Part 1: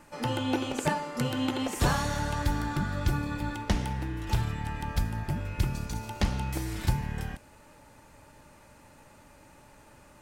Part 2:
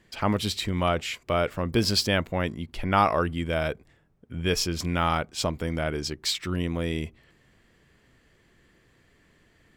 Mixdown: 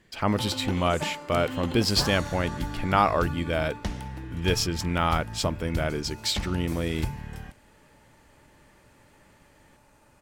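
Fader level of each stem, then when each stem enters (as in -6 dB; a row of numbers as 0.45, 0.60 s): -4.5, 0.0 dB; 0.15, 0.00 s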